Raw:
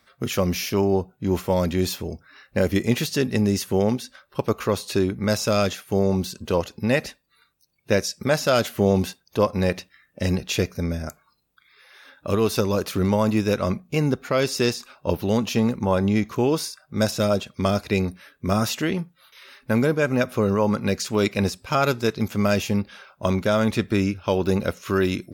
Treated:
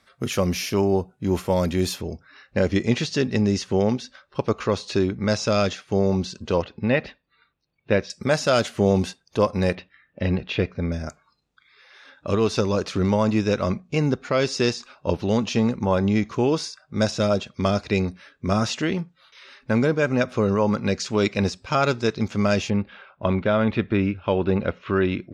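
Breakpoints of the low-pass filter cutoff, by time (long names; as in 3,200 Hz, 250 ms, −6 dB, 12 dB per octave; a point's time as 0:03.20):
low-pass filter 24 dB per octave
12,000 Hz
from 0:02.01 6,500 Hz
from 0:06.62 3,600 Hz
from 0:08.10 8,800 Hz
from 0:09.75 3,500 Hz
from 0:10.92 7,000 Hz
from 0:22.70 3,300 Hz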